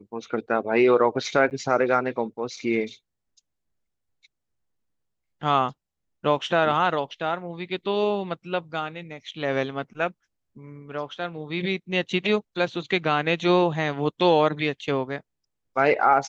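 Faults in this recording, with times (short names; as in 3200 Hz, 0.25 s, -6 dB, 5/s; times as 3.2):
1.5–1.51 gap 9 ms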